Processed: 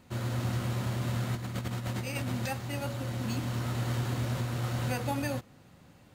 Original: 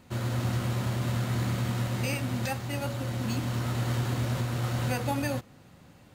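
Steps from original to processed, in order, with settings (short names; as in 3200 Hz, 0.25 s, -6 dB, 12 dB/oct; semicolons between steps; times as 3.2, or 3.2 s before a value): 1.34–2.32 negative-ratio compressor -31 dBFS, ratio -0.5; gain -2.5 dB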